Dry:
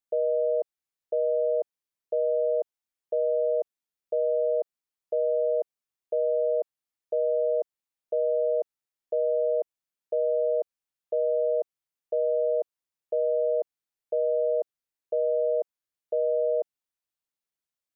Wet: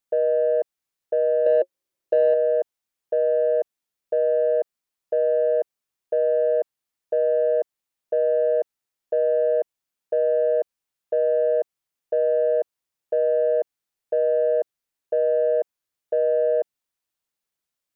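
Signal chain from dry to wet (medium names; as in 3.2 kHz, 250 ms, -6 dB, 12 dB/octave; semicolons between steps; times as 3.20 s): 1.46–2.34 s: small resonant body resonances 360/540 Hz, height 12 dB, ringing for 55 ms; in parallel at -6 dB: saturation -23 dBFS, distortion -15 dB; on the sum: trim +2 dB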